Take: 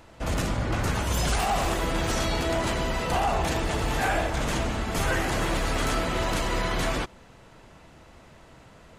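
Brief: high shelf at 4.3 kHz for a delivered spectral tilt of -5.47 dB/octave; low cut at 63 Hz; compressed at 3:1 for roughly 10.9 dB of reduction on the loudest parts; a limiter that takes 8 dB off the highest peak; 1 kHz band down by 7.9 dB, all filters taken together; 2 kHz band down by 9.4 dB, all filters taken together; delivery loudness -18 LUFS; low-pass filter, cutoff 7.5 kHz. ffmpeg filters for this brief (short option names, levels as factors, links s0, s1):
-af "highpass=63,lowpass=7500,equalizer=f=1000:t=o:g=-9,equalizer=f=2000:t=o:g=-8,highshelf=f=4300:g=-5.5,acompressor=threshold=0.01:ratio=3,volume=23.7,alimiter=limit=0.398:level=0:latency=1"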